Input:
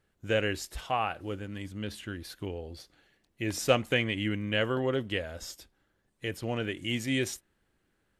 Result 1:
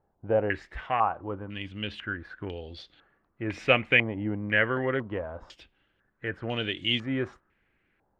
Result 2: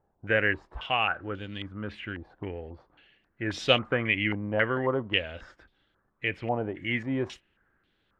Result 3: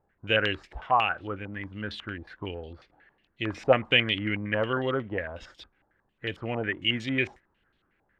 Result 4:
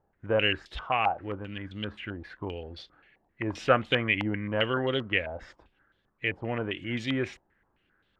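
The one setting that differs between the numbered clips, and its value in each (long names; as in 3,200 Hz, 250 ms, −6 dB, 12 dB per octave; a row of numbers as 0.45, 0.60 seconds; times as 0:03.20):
low-pass on a step sequencer, speed: 2, 3.7, 11, 7.6 Hertz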